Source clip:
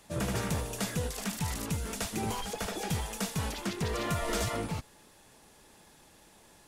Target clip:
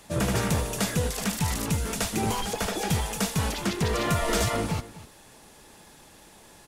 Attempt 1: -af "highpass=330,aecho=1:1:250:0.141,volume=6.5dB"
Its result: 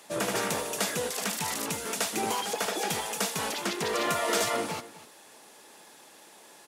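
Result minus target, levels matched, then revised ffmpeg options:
250 Hz band -5.0 dB
-af "aecho=1:1:250:0.141,volume=6.5dB"

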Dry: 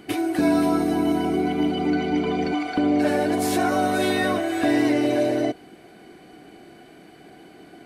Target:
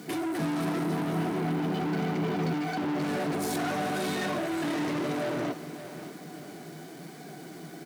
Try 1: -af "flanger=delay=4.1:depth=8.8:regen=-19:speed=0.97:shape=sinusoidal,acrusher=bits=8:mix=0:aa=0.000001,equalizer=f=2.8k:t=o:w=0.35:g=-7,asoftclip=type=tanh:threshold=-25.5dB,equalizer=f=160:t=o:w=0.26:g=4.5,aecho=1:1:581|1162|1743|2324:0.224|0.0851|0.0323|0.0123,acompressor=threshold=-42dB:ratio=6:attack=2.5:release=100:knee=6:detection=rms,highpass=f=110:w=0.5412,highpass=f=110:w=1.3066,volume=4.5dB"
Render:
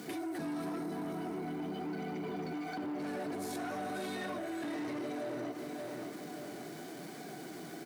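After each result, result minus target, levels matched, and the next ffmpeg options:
compressor: peak gain reduction +15 dB; 125 Hz band -4.5 dB; soft clip: distortion -5 dB
-af "flanger=delay=4.1:depth=8.8:regen=-19:speed=0.97:shape=sinusoidal,acrusher=bits=8:mix=0:aa=0.000001,equalizer=f=2.8k:t=o:w=0.35:g=-7,asoftclip=type=tanh:threshold=-25.5dB,highpass=f=110:w=0.5412,highpass=f=110:w=1.3066,equalizer=f=160:t=o:w=0.26:g=4.5,aecho=1:1:581|1162|1743|2324:0.224|0.0851|0.0323|0.0123,volume=4.5dB"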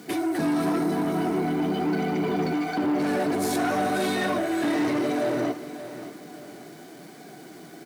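125 Hz band -5.5 dB; soft clip: distortion -5 dB
-af "flanger=delay=4.1:depth=8.8:regen=-19:speed=0.97:shape=sinusoidal,acrusher=bits=8:mix=0:aa=0.000001,equalizer=f=2.8k:t=o:w=0.35:g=-7,asoftclip=type=tanh:threshold=-25.5dB,highpass=f=110:w=0.5412,highpass=f=110:w=1.3066,equalizer=f=160:t=o:w=0.26:g=13,aecho=1:1:581|1162|1743|2324:0.224|0.0851|0.0323|0.0123,volume=4.5dB"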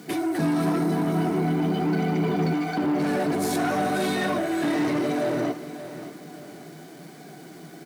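soft clip: distortion -5 dB
-af "flanger=delay=4.1:depth=8.8:regen=-19:speed=0.97:shape=sinusoidal,acrusher=bits=8:mix=0:aa=0.000001,equalizer=f=2.8k:t=o:w=0.35:g=-7,asoftclip=type=tanh:threshold=-33.5dB,highpass=f=110:w=0.5412,highpass=f=110:w=1.3066,equalizer=f=160:t=o:w=0.26:g=13,aecho=1:1:581|1162|1743|2324:0.224|0.0851|0.0323|0.0123,volume=4.5dB"

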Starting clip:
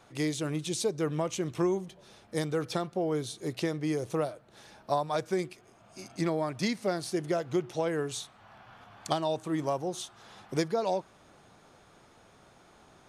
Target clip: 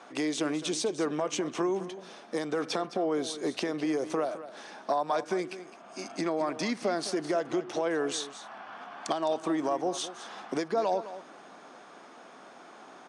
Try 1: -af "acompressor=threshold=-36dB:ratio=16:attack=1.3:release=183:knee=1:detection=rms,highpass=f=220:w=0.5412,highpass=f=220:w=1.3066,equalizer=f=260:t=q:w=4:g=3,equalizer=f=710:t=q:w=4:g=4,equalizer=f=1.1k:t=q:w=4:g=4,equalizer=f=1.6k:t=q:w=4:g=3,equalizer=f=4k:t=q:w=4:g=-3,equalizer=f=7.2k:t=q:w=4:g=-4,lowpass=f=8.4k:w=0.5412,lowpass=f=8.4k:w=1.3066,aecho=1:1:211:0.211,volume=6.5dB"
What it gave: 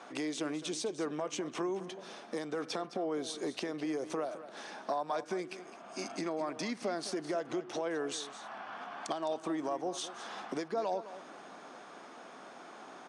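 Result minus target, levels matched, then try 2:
compressor: peak gain reduction +6 dB
-af "acompressor=threshold=-29.5dB:ratio=16:attack=1.3:release=183:knee=1:detection=rms,highpass=f=220:w=0.5412,highpass=f=220:w=1.3066,equalizer=f=260:t=q:w=4:g=3,equalizer=f=710:t=q:w=4:g=4,equalizer=f=1.1k:t=q:w=4:g=4,equalizer=f=1.6k:t=q:w=4:g=3,equalizer=f=4k:t=q:w=4:g=-3,equalizer=f=7.2k:t=q:w=4:g=-4,lowpass=f=8.4k:w=0.5412,lowpass=f=8.4k:w=1.3066,aecho=1:1:211:0.211,volume=6.5dB"

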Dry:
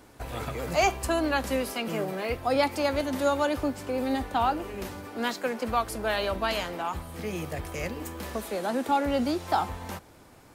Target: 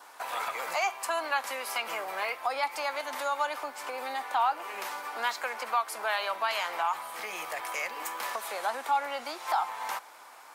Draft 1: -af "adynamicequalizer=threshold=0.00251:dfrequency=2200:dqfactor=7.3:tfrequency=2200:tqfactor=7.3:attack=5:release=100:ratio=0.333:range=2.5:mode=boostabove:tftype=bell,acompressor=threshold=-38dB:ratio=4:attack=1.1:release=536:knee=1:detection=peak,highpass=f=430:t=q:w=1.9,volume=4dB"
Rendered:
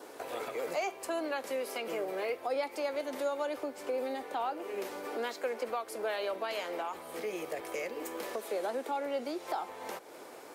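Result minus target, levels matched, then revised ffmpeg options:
500 Hz band +8.0 dB; compressor: peak gain reduction +7 dB
-af "adynamicequalizer=threshold=0.00251:dfrequency=2200:dqfactor=7.3:tfrequency=2200:tqfactor=7.3:attack=5:release=100:ratio=0.333:range=2.5:mode=boostabove:tftype=bell,acompressor=threshold=-28.5dB:ratio=4:attack=1.1:release=536:knee=1:detection=peak,highpass=f=950:t=q:w=1.9,volume=4dB"

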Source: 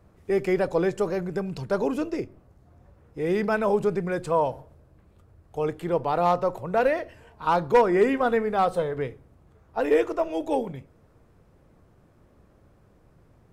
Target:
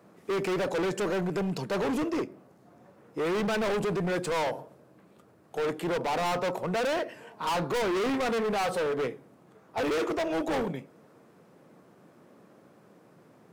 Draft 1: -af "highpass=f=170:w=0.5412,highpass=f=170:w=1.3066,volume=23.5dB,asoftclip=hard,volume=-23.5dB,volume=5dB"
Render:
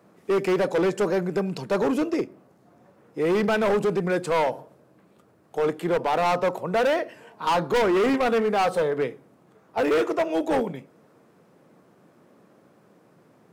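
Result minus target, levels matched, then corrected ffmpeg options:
overloaded stage: distortion -4 dB
-af "highpass=f=170:w=0.5412,highpass=f=170:w=1.3066,volume=31.5dB,asoftclip=hard,volume=-31.5dB,volume=5dB"

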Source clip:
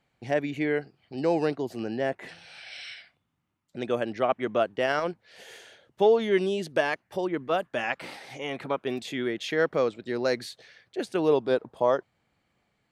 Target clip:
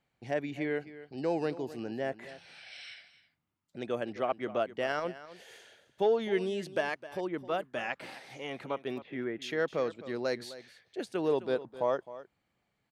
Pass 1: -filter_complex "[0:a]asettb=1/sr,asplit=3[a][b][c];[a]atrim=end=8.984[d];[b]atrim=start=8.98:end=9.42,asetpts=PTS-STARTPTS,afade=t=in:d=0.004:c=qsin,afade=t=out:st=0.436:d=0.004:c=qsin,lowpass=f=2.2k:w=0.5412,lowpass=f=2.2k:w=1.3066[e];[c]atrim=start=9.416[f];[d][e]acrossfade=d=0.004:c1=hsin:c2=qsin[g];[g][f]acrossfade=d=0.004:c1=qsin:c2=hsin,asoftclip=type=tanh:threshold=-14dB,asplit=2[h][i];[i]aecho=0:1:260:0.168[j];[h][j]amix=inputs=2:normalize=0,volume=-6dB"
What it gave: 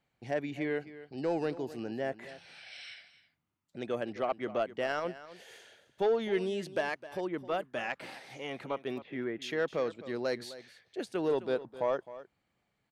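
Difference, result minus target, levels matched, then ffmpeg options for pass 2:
soft clip: distortion +12 dB
-filter_complex "[0:a]asettb=1/sr,asplit=3[a][b][c];[a]atrim=end=8.984[d];[b]atrim=start=8.98:end=9.42,asetpts=PTS-STARTPTS,afade=t=in:d=0.004:c=qsin,afade=t=out:st=0.436:d=0.004:c=qsin,lowpass=f=2.2k:w=0.5412,lowpass=f=2.2k:w=1.3066[e];[c]atrim=start=9.416[f];[d][e]acrossfade=d=0.004:c1=hsin:c2=qsin[g];[g][f]acrossfade=d=0.004:c1=qsin:c2=hsin,asoftclip=type=tanh:threshold=-7dB,asplit=2[h][i];[i]aecho=0:1:260:0.168[j];[h][j]amix=inputs=2:normalize=0,volume=-6dB"

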